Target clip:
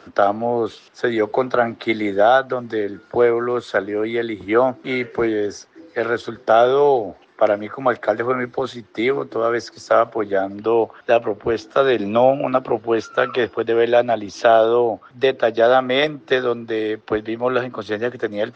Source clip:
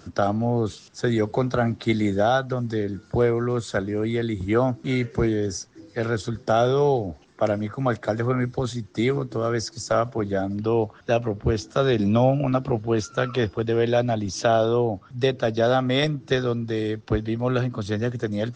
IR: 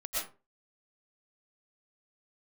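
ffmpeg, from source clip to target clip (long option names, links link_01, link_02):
-filter_complex "[0:a]acrossover=split=320 3800:gain=0.1 1 0.112[link_01][link_02][link_03];[link_01][link_02][link_03]amix=inputs=3:normalize=0,volume=7.5dB"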